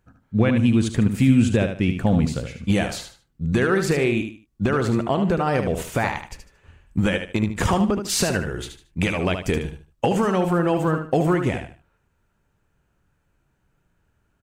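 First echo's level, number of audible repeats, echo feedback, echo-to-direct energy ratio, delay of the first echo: -7.5 dB, 3, 27%, -7.0 dB, 75 ms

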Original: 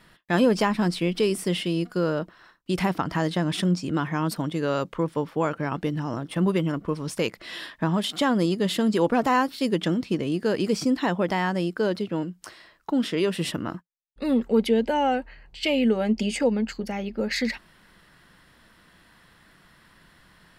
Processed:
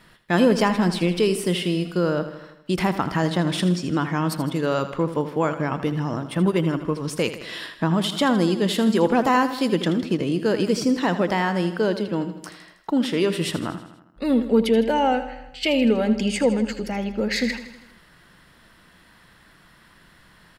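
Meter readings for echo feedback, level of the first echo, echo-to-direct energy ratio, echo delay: 58%, -12.0 dB, -10.0 dB, 80 ms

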